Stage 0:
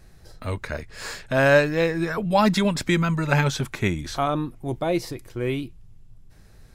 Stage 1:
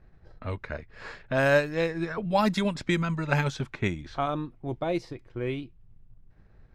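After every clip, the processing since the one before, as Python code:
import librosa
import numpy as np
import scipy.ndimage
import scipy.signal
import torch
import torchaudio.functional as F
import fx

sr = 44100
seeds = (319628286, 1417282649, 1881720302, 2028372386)

y = fx.env_lowpass(x, sr, base_hz=1900.0, full_db=-14.5)
y = fx.transient(y, sr, attack_db=2, sustain_db=-4)
y = y * librosa.db_to_amplitude(-5.5)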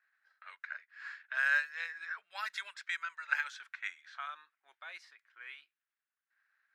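y = fx.ladder_highpass(x, sr, hz=1400.0, resonance_pct=60)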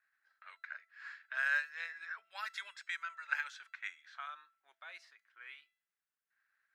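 y = fx.comb_fb(x, sr, f0_hz=670.0, decay_s=0.51, harmonics='all', damping=0.0, mix_pct=60)
y = y * librosa.db_to_amplitude(4.5)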